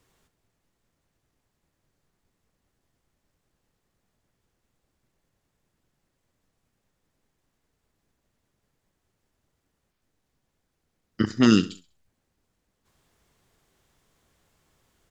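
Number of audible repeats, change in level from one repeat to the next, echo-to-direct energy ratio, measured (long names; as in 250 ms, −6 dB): 3, −9.0 dB, −15.5 dB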